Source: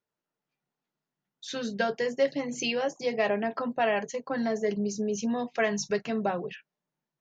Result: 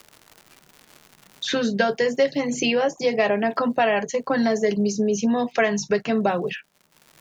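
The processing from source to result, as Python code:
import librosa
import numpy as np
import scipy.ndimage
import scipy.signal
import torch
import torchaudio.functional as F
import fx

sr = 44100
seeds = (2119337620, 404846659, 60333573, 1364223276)

y = fx.dmg_crackle(x, sr, seeds[0], per_s=180.0, level_db=-59.0)
y = fx.band_squash(y, sr, depth_pct=70)
y = F.gain(torch.from_numpy(y), 7.0).numpy()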